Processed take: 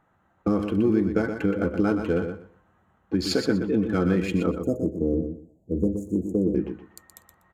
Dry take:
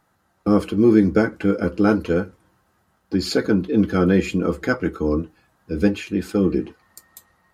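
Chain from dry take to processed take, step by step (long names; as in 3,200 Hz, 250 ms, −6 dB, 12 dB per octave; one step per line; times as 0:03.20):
adaptive Wiener filter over 9 samples
0:04.51–0:06.55: Chebyshev band-stop filter 650–6,800 Hz, order 4
downward compressor 4 to 1, threshold −20 dBFS, peak gain reduction 10 dB
repeating echo 122 ms, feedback 19%, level −7.5 dB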